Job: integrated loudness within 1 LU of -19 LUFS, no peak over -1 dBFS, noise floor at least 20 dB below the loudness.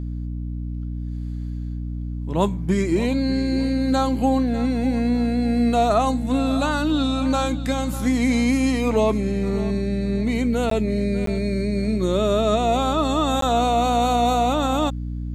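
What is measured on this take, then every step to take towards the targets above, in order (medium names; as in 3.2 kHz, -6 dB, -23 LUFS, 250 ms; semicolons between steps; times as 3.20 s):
dropouts 3; longest dropout 13 ms; hum 60 Hz; highest harmonic 300 Hz; hum level -25 dBFS; loudness -22.0 LUFS; peak level -6.0 dBFS; loudness target -19.0 LUFS
-> interpolate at 10.70/11.26/13.41 s, 13 ms; hum notches 60/120/180/240/300 Hz; trim +3 dB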